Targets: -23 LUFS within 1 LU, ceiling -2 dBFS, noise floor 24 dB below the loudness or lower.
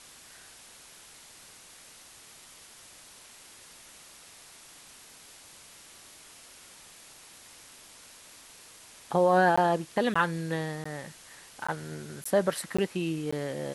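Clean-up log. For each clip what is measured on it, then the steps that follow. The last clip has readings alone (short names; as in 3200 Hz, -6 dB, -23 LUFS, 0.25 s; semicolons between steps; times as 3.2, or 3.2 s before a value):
dropouts 7; longest dropout 15 ms; noise floor -52 dBFS; noise floor target -53 dBFS; loudness -28.5 LUFS; peak -12.0 dBFS; loudness target -23.0 LUFS
-> interpolate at 9.56/10.14/10.84/11.67/12.24/12.77/13.31, 15 ms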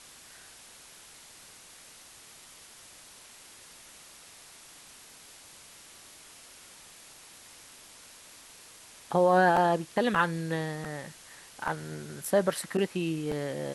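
dropouts 0; noise floor -52 dBFS; noise floor target -53 dBFS
-> denoiser 6 dB, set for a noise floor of -52 dBFS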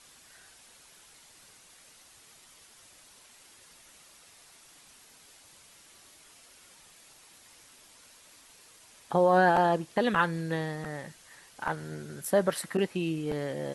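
noise floor -57 dBFS; loudness -28.5 LUFS; peak -12.0 dBFS; loudness target -23.0 LUFS
-> gain +5.5 dB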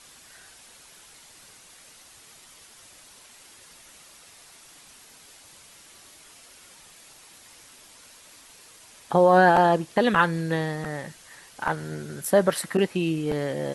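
loudness -23.0 LUFS; peak -6.5 dBFS; noise floor -51 dBFS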